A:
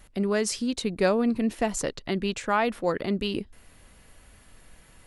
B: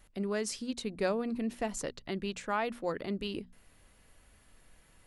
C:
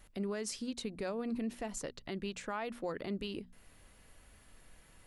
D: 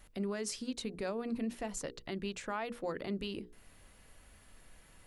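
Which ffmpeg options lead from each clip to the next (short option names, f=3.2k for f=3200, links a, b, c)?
-af "bandreject=f=60:t=h:w=6,bandreject=f=120:t=h:w=6,bandreject=f=180:t=h:w=6,bandreject=f=240:t=h:w=6,volume=-8dB"
-af "alimiter=level_in=6dB:limit=-24dB:level=0:latency=1:release=257,volume=-6dB,volume=1.5dB"
-af "bandreject=f=60:t=h:w=6,bandreject=f=120:t=h:w=6,bandreject=f=180:t=h:w=6,bandreject=f=240:t=h:w=6,bandreject=f=300:t=h:w=6,bandreject=f=360:t=h:w=6,bandreject=f=420:t=h:w=6,bandreject=f=480:t=h:w=6,volume=1dB"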